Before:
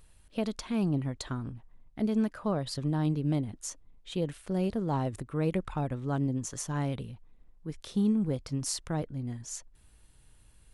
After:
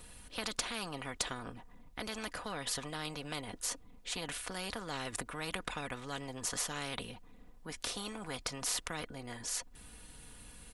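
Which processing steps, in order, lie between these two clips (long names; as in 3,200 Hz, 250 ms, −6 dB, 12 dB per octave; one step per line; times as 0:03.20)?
comb filter 4.1 ms, depth 55%
every bin compressed towards the loudest bin 4 to 1
level +1 dB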